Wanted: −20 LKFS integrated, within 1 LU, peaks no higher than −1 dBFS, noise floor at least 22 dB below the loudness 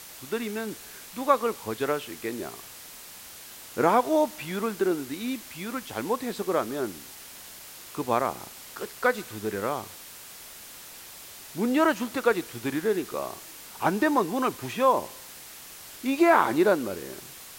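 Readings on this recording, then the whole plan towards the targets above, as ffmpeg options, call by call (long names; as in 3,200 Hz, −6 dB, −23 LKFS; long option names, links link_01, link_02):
background noise floor −45 dBFS; target noise floor −49 dBFS; integrated loudness −27.0 LKFS; sample peak −6.0 dBFS; target loudness −20.0 LKFS
→ -af "afftdn=noise_reduction=6:noise_floor=-45"
-af "volume=7dB,alimiter=limit=-1dB:level=0:latency=1"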